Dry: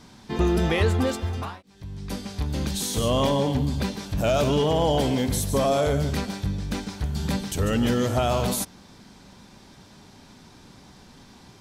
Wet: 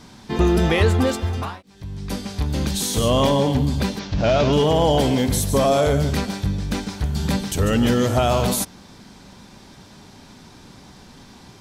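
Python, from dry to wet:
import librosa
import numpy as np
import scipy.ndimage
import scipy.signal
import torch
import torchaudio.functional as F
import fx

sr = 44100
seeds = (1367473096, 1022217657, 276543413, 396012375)

y = fx.cvsd(x, sr, bps=32000, at=(3.99, 4.53))
y = y * librosa.db_to_amplitude(4.5)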